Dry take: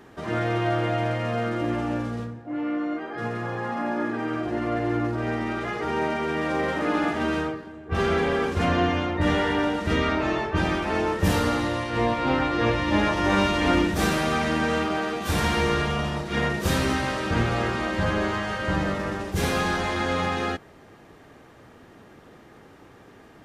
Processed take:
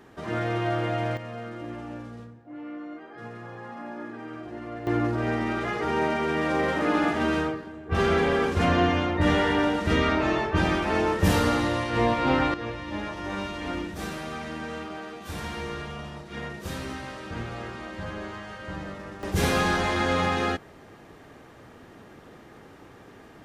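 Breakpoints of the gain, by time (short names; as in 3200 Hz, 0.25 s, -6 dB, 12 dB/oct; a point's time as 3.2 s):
-2.5 dB
from 1.17 s -10.5 dB
from 4.87 s +0.5 dB
from 12.54 s -11 dB
from 19.23 s +1 dB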